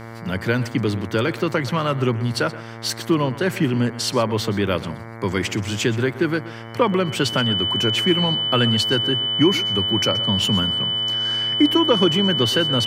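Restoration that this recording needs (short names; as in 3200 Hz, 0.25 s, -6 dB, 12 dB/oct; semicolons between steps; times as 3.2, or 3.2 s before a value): de-hum 114.1 Hz, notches 20; notch 3000 Hz, Q 30; inverse comb 0.125 s -17 dB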